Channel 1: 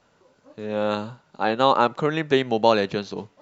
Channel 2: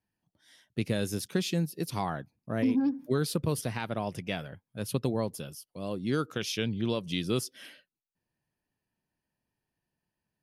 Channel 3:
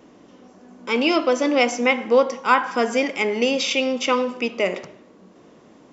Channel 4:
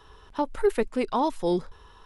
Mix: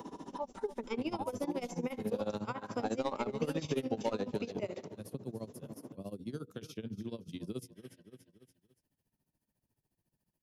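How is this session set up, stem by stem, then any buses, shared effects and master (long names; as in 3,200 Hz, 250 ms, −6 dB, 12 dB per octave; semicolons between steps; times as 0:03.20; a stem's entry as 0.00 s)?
−4.0 dB, 1.40 s, no bus, no send, echo send −15 dB, soft clipping −10.5 dBFS, distortion −14 dB
−12.5 dB, 0.20 s, no bus, no send, echo send −15.5 dB, mains-hum notches 60/120/180/240/300/360/420/480 Hz
−7.5 dB, 0.00 s, bus A, no send, no echo send, no processing
−11.0 dB, 0.00 s, bus A, no send, echo send −14.5 dB, parametric band 890 Hz +15 dB 0.5 octaves; comb filter 5.1 ms, depth 70%; treble cut that deepens with the level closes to 1,500 Hz, closed at −14.5 dBFS
bus A: 0.0 dB, high-pass filter 130 Hz; downward compressor 4 to 1, threshold −28 dBFS, peak gain reduction 9 dB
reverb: not used
echo: repeating echo 287 ms, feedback 30%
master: parametric band 2,000 Hz −12 dB 2.9 octaves; amplitude tremolo 14 Hz, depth 89%; multiband upward and downward compressor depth 70%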